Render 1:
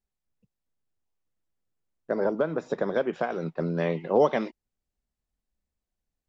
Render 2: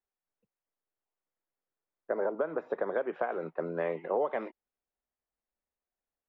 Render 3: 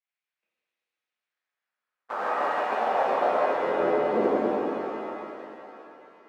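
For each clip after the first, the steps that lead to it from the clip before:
low-pass filter 3,700 Hz 12 dB per octave; three-way crossover with the lows and the highs turned down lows −17 dB, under 340 Hz, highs −19 dB, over 2,400 Hz; downward compressor 6 to 1, threshold −26 dBFS, peak gain reduction 9 dB
sub-harmonics by changed cycles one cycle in 2, muted; band-pass filter sweep 2,300 Hz → 280 Hz, 0:01.01–0:04.53; reverb with rising layers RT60 3.1 s, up +7 semitones, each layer −8 dB, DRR −9.5 dB; level +6.5 dB

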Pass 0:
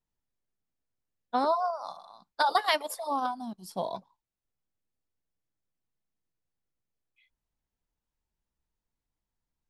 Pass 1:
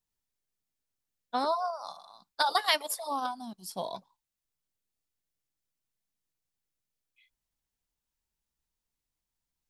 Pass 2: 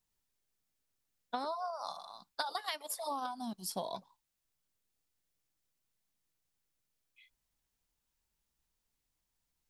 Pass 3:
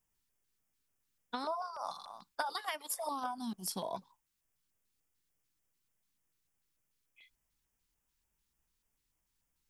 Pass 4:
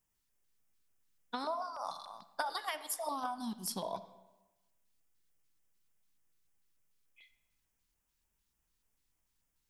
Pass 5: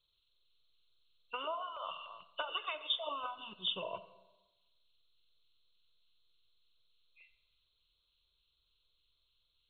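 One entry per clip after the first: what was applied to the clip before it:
high-shelf EQ 2,200 Hz +9.5 dB; level −4 dB
downward compressor 12 to 1, threshold −37 dBFS, peak gain reduction 17.5 dB; level +3 dB
auto-filter notch square 3.4 Hz 650–4,100 Hz; level +2 dB
convolution reverb RT60 1.1 s, pre-delay 5 ms, DRR 12.5 dB
hearing-aid frequency compression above 2,500 Hz 4 to 1; phaser with its sweep stopped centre 1,200 Hz, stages 8; level +1 dB

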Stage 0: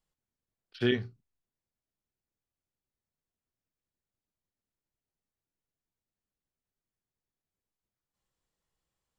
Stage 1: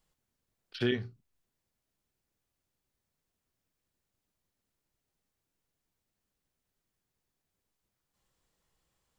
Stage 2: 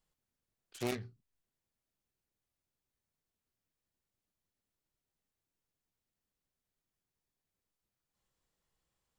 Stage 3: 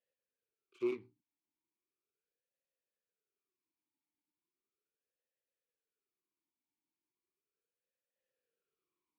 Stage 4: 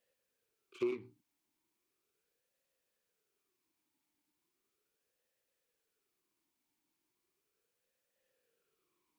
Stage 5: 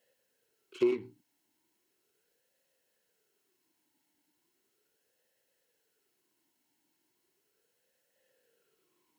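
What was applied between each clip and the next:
downward compressor 1.5 to 1, threshold −51 dBFS, peak gain reduction 10.5 dB; level +7.5 dB
phase distortion by the signal itself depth 0.68 ms; level −6 dB
formant filter swept between two vowels e-u 0.37 Hz; level +6.5 dB
downward compressor 4 to 1, threshold −43 dBFS, peak gain reduction 11 dB; level +9.5 dB
notch comb filter 1,200 Hz; level +8 dB

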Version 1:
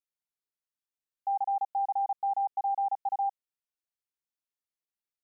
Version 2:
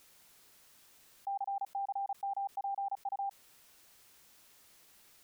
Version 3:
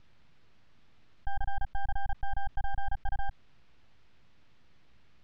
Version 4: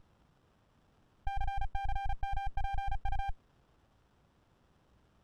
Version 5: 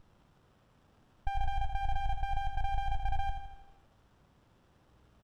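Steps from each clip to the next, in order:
envelope flattener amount 70%; level −8 dB
half-wave rectification; transistor ladder low-pass 6,200 Hz, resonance 20%; bass and treble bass +15 dB, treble −13 dB; level +7.5 dB
windowed peak hold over 17 samples
repeating echo 81 ms, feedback 56%, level −7.5 dB; level +2 dB

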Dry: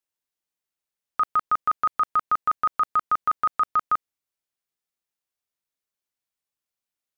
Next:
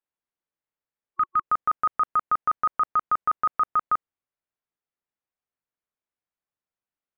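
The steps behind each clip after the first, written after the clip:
low-pass filter 1,900 Hz 12 dB per octave
healed spectral selection 0:00.50–0:01.47, 350–1,100 Hz before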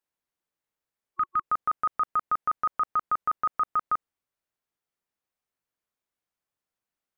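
brickwall limiter −22.5 dBFS, peak gain reduction 6.5 dB
level +3 dB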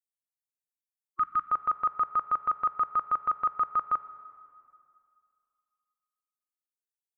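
spectral dynamics exaggerated over time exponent 2
convolution reverb RT60 2.4 s, pre-delay 4 ms, DRR 13.5 dB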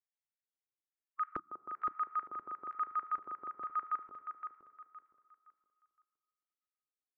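auto-filter band-pass square 1.1 Hz 340–1,900 Hz
repeating echo 516 ms, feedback 29%, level −7.5 dB
level −1 dB

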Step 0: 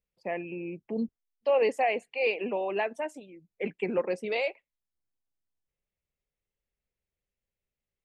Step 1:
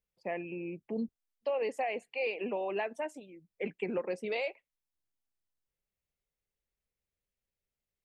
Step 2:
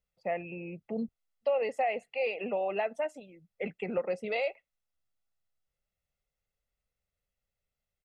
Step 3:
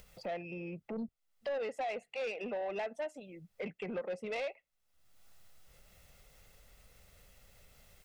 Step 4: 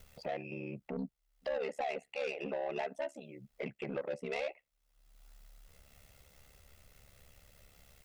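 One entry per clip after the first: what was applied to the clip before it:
downward compressor 5 to 1, threshold −27 dBFS, peak gain reduction 7 dB; level −2.5 dB
high-shelf EQ 5,400 Hz −8 dB; comb filter 1.5 ms, depth 50%; level +2 dB
upward compression, threshold −33 dBFS; soft clipping −29 dBFS, distortion −12 dB; level −3 dB
ring modulation 35 Hz; level +3 dB

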